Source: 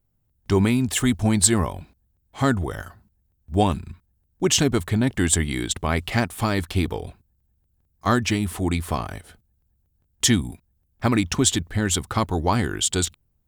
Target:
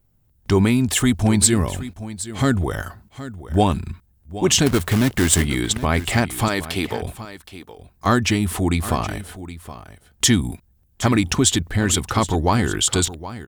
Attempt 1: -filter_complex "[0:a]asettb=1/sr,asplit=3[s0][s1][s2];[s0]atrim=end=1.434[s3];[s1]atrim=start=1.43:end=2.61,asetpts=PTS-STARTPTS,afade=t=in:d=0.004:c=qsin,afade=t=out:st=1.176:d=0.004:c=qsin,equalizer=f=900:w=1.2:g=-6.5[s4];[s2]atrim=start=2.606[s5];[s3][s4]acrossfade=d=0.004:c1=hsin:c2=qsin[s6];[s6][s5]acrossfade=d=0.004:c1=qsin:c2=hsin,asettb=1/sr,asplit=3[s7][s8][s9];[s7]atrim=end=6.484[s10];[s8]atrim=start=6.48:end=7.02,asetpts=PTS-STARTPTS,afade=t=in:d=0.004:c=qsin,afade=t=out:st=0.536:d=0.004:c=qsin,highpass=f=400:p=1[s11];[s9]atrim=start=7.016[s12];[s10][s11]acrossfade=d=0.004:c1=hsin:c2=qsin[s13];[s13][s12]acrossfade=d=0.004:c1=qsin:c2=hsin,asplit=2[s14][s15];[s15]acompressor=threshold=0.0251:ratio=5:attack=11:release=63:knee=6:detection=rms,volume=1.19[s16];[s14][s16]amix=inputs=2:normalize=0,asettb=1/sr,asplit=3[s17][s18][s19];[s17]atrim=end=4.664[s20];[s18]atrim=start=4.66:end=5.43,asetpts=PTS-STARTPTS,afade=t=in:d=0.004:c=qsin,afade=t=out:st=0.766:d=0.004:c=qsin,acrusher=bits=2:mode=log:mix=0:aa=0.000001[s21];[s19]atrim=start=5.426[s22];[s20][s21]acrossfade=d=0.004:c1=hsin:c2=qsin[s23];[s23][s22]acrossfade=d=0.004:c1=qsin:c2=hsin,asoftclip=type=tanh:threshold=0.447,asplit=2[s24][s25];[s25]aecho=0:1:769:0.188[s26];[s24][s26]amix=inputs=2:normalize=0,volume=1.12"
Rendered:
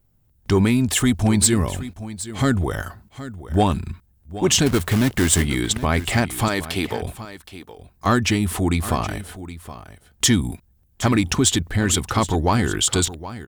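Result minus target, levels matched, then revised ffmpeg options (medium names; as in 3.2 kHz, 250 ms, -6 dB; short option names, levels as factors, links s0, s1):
saturation: distortion +12 dB
-filter_complex "[0:a]asettb=1/sr,asplit=3[s0][s1][s2];[s0]atrim=end=1.434[s3];[s1]atrim=start=1.43:end=2.61,asetpts=PTS-STARTPTS,afade=t=in:d=0.004:c=qsin,afade=t=out:st=1.176:d=0.004:c=qsin,equalizer=f=900:w=1.2:g=-6.5[s4];[s2]atrim=start=2.606[s5];[s3][s4]acrossfade=d=0.004:c1=hsin:c2=qsin[s6];[s6][s5]acrossfade=d=0.004:c1=qsin:c2=hsin,asettb=1/sr,asplit=3[s7][s8][s9];[s7]atrim=end=6.484[s10];[s8]atrim=start=6.48:end=7.02,asetpts=PTS-STARTPTS,afade=t=in:d=0.004:c=qsin,afade=t=out:st=0.536:d=0.004:c=qsin,highpass=f=400:p=1[s11];[s9]atrim=start=7.016[s12];[s10][s11]acrossfade=d=0.004:c1=hsin:c2=qsin[s13];[s13][s12]acrossfade=d=0.004:c1=qsin:c2=hsin,asplit=2[s14][s15];[s15]acompressor=threshold=0.0251:ratio=5:attack=11:release=63:knee=6:detection=rms,volume=1.19[s16];[s14][s16]amix=inputs=2:normalize=0,asettb=1/sr,asplit=3[s17][s18][s19];[s17]atrim=end=4.664[s20];[s18]atrim=start=4.66:end=5.43,asetpts=PTS-STARTPTS,afade=t=in:d=0.004:c=qsin,afade=t=out:st=0.766:d=0.004:c=qsin,acrusher=bits=2:mode=log:mix=0:aa=0.000001[s21];[s19]atrim=start=5.426[s22];[s20][s21]acrossfade=d=0.004:c1=hsin:c2=qsin[s23];[s23][s22]acrossfade=d=0.004:c1=qsin:c2=hsin,asoftclip=type=tanh:threshold=1,asplit=2[s24][s25];[s25]aecho=0:1:769:0.188[s26];[s24][s26]amix=inputs=2:normalize=0,volume=1.12"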